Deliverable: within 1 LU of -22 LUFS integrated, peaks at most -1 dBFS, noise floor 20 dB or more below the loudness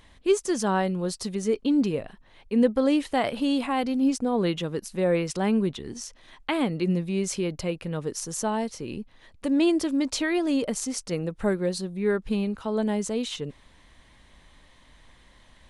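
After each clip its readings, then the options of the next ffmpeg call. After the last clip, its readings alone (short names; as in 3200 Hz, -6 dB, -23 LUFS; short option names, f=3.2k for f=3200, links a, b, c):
loudness -26.5 LUFS; peak -9.5 dBFS; loudness target -22.0 LUFS
-> -af "volume=4.5dB"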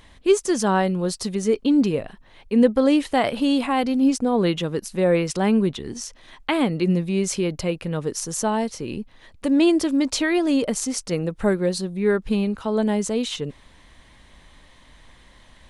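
loudness -22.0 LUFS; peak -5.0 dBFS; noise floor -52 dBFS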